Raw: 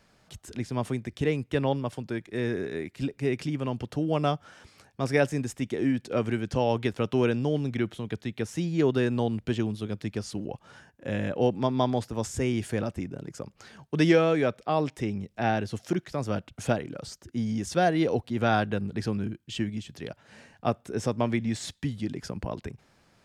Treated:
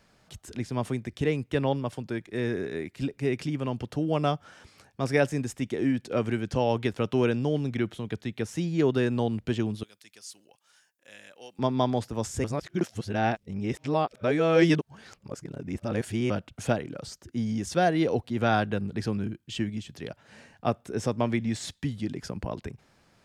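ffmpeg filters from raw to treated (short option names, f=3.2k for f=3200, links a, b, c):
-filter_complex "[0:a]asettb=1/sr,asplit=3[a][b][c];[a]atrim=end=9.834[d];[b]atrim=start=9.83:end=11.59,asetpts=PTS-STARTPTS,afade=t=in:d=0.004:c=qsin,afade=t=out:st=1.756:d=0.004:c=qsin,aderivative[e];[c]atrim=start=11.586[f];[d][e]acrossfade=d=0.004:c1=hsin:c2=qsin[g];[g][f]acrossfade=d=0.004:c1=qsin:c2=hsin,asplit=3[h][i][j];[h]atrim=end=12.442[k];[i]atrim=start=12.438:end=16.302,asetpts=PTS-STARTPTS,areverse[l];[j]atrim=start=16.298[m];[k][l]acrossfade=d=0.004:c1=hsin:c2=hsin[n];[n][m]acrossfade=d=0.004:c1=hsin:c2=hsin"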